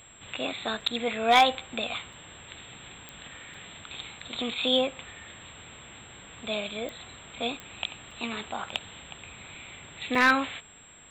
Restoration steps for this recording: clip repair -11.5 dBFS; de-click; notch 7600 Hz, Q 30; interpolate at 0.81/2.13/3.54/4.2/8.11/8.7/10.15, 3.4 ms

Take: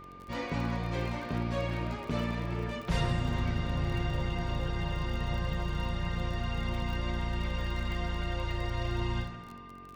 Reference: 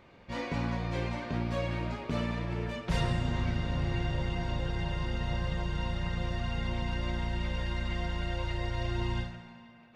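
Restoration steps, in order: de-click; de-hum 45.9 Hz, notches 10; notch 1200 Hz, Q 30

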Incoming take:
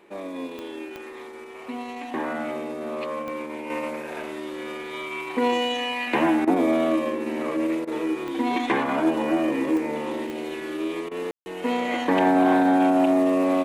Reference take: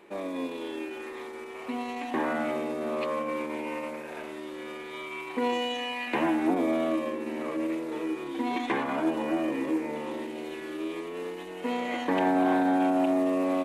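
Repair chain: de-click; room tone fill 11.31–11.46; interpolate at 6.45/7.85/11.09, 22 ms; gain correction -5.5 dB, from 3.7

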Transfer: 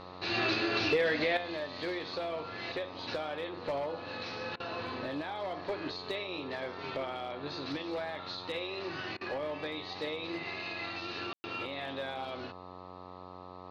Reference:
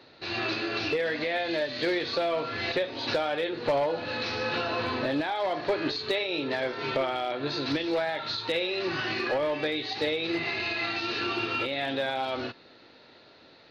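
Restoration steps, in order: de-hum 91.2 Hz, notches 14; room tone fill 11.33–11.44; interpolate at 4.56/9.17, 39 ms; gain 0 dB, from 1.37 s +9 dB

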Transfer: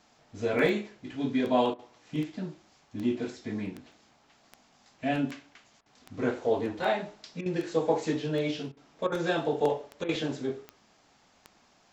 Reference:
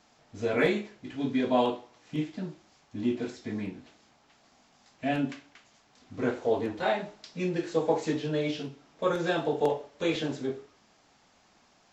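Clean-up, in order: de-click; interpolate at 0.59/3.92, 2.3 ms; interpolate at 1.74/5.81/7.41/8.72/9.07/10.04, 48 ms

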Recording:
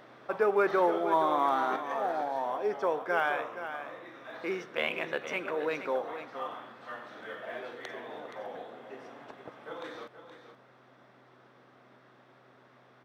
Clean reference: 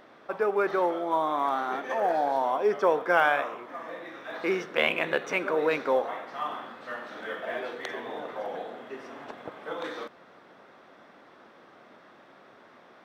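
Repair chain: de-hum 127 Hz, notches 3; inverse comb 0.473 s -10.5 dB; gain correction +6.5 dB, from 1.76

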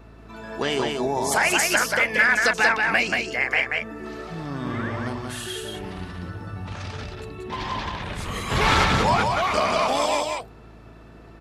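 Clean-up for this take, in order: de-hum 54.8 Hz, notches 6; inverse comb 0.183 s -3.5 dB

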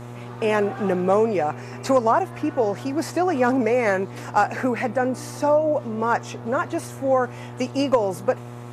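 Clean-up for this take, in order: clip repair -8 dBFS; de-hum 120.4 Hz, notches 11

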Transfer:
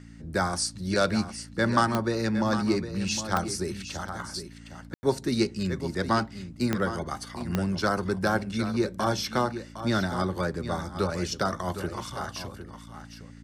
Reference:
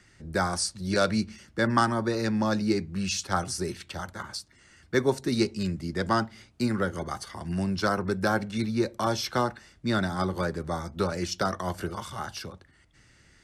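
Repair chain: de-click; de-hum 56.7 Hz, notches 5; room tone fill 4.94–5.03; inverse comb 0.76 s -11 dB

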